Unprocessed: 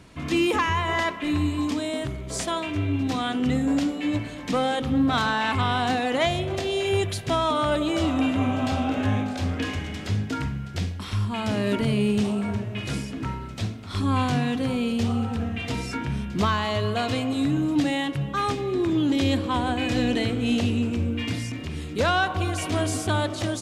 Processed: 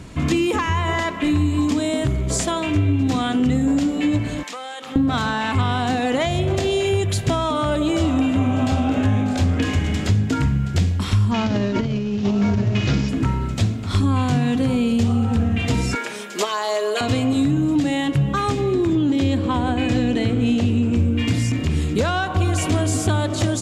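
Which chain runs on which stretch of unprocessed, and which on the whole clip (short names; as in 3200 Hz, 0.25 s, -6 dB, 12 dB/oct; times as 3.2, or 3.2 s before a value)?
4.43–4.96 HPF 880 Hz + compressor, threshold -37 dBFS
11.31–13.09 CVSD 32 kbps + negative-ratio compressor -27 dBFS, ratio -0.5
15.95–17.01 Chebyshev high-pass 450 Hz, order 3 + high shelf 6100 Hz +7 dB + comb 4.9 ms, depth 75%
18.95–20.96 HPF 60 Hz + high shelf 5400 Hz -7 dB
whole clip: bell 7200 Hz +6 dB 0.3 oct; compressor, threshold -27 dBFS; low shelf 320 Hz +7 dB; gain +7 dB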